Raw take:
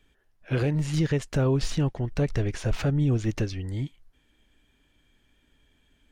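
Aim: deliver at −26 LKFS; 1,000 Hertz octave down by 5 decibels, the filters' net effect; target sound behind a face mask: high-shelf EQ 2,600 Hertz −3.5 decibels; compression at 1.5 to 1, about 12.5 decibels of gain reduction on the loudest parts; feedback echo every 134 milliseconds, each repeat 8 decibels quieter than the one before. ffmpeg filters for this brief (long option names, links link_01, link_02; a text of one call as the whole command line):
ffmpeg -i in.wav -af "equalizer=frequency=1000:width_type=o:gain=-6.5,acompressor=threshold=-56dB:ratio=1.5,highshelf=frequency=2600:gain=-3.5,aecho=1:1:134|268|402|536|670:0.398|0.159|0.0637|0.0255|0.0102,volume=13dB" out.wav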